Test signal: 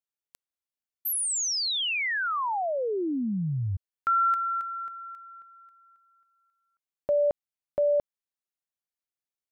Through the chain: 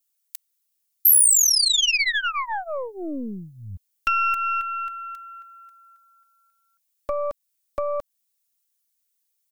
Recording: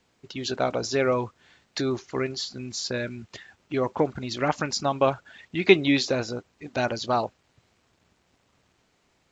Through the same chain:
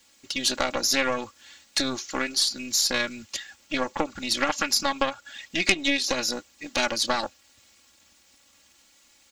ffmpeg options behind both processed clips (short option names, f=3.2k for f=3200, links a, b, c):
-filter_complex "[0:a]acrossover=split=2700[a][b];[b]acompressor=threshold=-33dB:ratio=4:attack=1:release=60[c];[a][c]amix=inputs=2:normalize=0,aecho=1:1:3.6:0.83,acompressor=threshold=-23dB:ratio=6:attack=31:release=238:knee=6:detection=rms,aeval=exprs='0.316*(cos(1*acos(clip(val(0)/0.316,-1,1)))-cos(1*PI/2))+0.0891*(cos(4*acos(clip(val(0)/0.316,-1,1)))-cos(4*PI/2))':c=same,crystalizer=i=8.5:c=0,volume=-4.5dB"